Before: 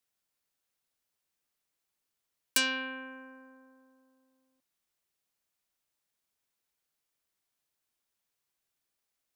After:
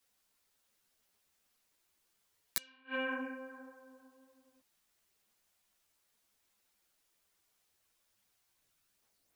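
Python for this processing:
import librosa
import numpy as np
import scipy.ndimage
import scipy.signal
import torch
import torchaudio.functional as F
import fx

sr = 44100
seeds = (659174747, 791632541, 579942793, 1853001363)

y = fx.gate_flip(x, sr, shuts_db=-28.0, range_db=-37)
y = fx.chorus_voices(y, sr, voices=4, hz=1.2, base_ms=12, depth_ms=3.0, mix_pct=55)
y = F.gain(torch.from_numpy(y), 10.5).numpy()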